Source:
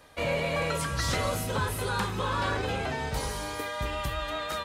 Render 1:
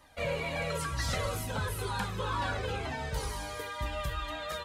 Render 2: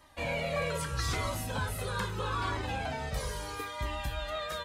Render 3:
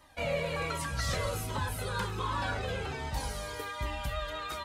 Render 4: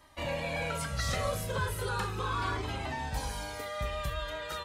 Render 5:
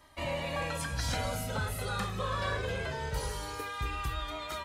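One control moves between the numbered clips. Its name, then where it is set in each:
cascading flanger, rate: 2.1, 0.78, 1.3, 0.37, 0.21 Hz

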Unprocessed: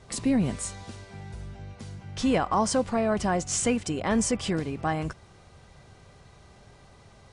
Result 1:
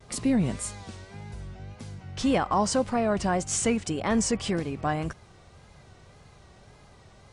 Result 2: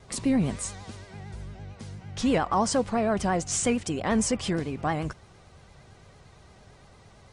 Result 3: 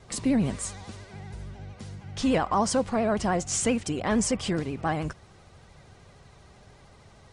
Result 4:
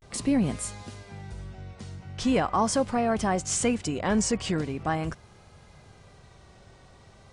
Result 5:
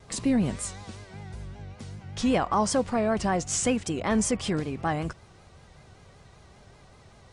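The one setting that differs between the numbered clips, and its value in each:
vibrato, rate: 1.8, 8.8, 13, 0.41, 5.2 Hz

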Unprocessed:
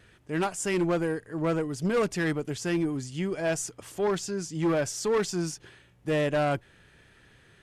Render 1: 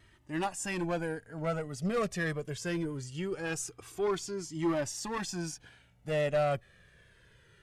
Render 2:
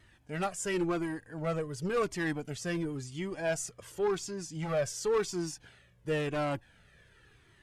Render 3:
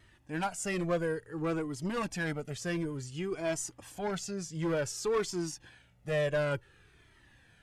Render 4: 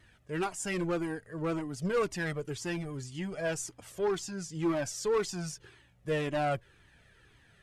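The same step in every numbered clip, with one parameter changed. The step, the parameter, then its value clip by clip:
cascading flanger, rate: 0.22, 0.93, 0.56, 1.9 Hz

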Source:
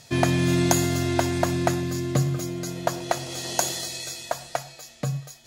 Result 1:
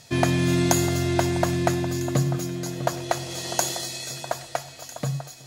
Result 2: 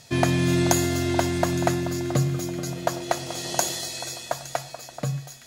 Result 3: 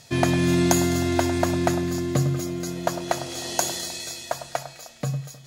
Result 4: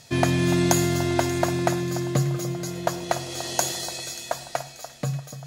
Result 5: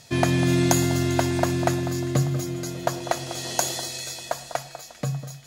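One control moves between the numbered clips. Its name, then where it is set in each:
echo with dull and thin repeats by turns, time: 0.65, 0.432, 0.103, 0.292, 0.198 s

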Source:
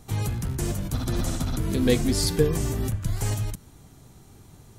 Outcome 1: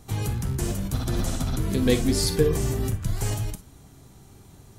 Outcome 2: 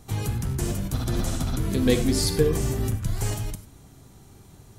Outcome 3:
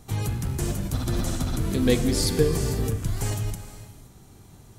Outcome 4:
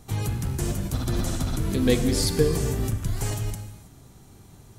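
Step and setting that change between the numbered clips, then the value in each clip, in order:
non-linear reverb, gate: 80, 120, 540, 350 ms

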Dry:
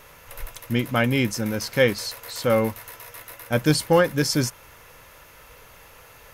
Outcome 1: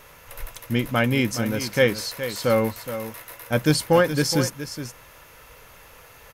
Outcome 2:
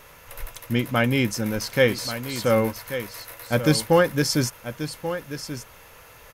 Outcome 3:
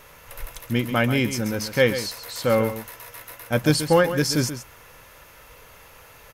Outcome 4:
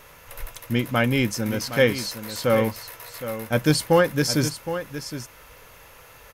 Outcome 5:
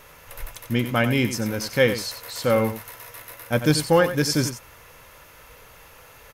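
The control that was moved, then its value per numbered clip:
echo, time: 419, 1135, 133, 765, 91 ms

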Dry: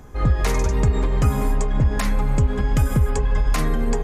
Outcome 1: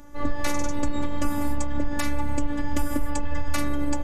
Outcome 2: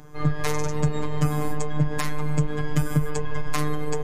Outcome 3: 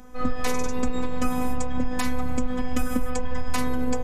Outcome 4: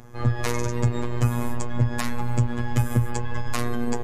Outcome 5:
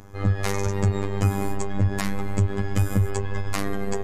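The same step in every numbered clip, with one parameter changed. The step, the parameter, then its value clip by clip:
robotiser, frequency: 290, 150, 250, 120, 99 Hz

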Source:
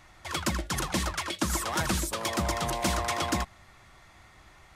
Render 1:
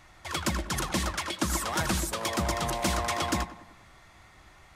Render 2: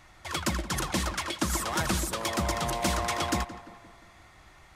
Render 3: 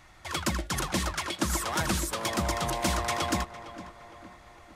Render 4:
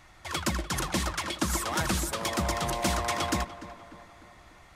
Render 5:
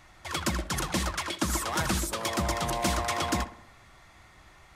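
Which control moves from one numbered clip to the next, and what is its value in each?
tape echo, time: 97, 173, 459, 296, 66 ms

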